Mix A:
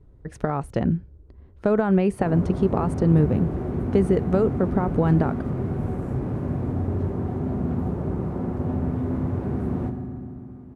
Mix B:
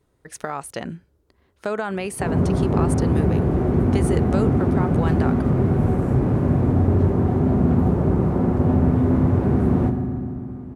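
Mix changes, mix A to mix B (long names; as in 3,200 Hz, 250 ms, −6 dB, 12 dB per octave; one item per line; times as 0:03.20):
speech: add spectral tilt +4.5 dB per octave
background +8.0 dB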